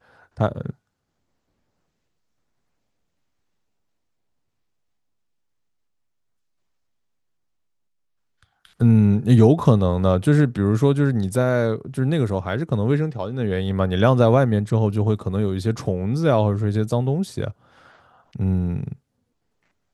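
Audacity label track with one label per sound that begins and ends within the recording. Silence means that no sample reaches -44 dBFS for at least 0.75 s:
8.430000	18.960000	sound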